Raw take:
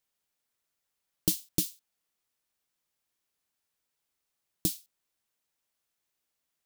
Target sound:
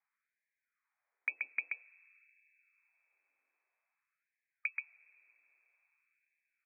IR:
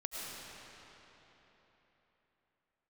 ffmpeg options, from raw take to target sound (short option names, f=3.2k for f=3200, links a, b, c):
-filter_complex "[0:a]lowshelf=f=75:g=-11.5,acompressor=threshold=-34dB:ratio=3,aecho=1:1:130:0.668,asplit=2[a][b];[1:a]atrim=start_sample=2205,asetrate=43218,aresample=44100,lowpass=1.6k[c];[b][c]afir=irnorm=-1:irlink=0,volume=-22dB[d];[a][d]amix=inputs=2:normalize=0,lowpass=f=2.2k:t=q:w=0.5098,lowpass=f=2.2k:t=q:w=0.6013,lowpass=f=2.2k:t=q:w=0.9,lowpass=f=2.2k:t=q:w=2.563,afreqshift=-2600,afftfilt=real='re*gte(b*sr/1024,240*pow(1600/240,0.5+0.5*sin(2*PI*0.51*pts/sr)))':imag='im*gte(b*sr/1024,240*pow(1600/240,0.5+0.5*sin(2*PI*0.51*pts/sr)))':win_size=1024:overlap=0.75,volume=3dB"